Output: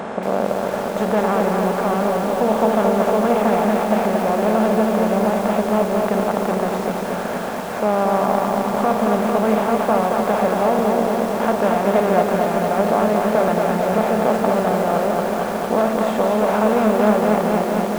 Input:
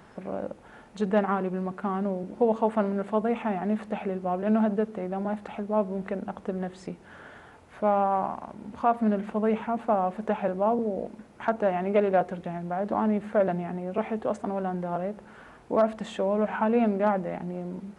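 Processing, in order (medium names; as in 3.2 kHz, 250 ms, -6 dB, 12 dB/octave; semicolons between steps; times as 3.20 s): spectral levelling over time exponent 0.4; bit-crushed delay 228 ms, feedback 80%, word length 6-bit, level -3.5 dB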